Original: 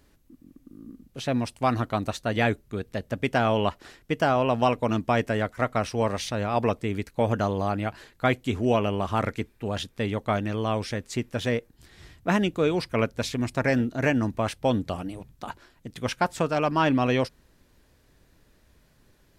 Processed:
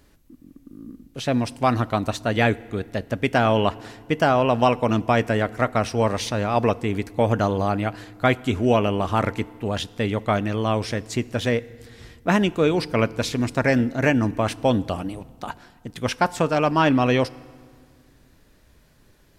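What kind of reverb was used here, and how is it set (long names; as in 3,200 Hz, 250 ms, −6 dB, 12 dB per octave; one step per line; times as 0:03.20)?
feedback delay network reverb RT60 1.9 s, low-frequency decay 1.5×, high-frequency decay 0.75×, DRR 19.5 dB
level +4 dB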